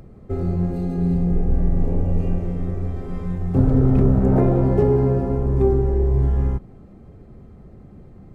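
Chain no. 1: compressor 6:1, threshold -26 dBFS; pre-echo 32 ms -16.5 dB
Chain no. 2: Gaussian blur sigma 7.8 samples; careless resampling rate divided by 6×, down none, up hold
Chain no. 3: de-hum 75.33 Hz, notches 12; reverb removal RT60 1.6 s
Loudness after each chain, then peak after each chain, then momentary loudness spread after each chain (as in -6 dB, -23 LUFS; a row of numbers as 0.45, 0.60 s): -31.0, -21.0, -24.5 LUFS; -17.5, -5.5, -5.0 dBFS; 16, 10, 12 LU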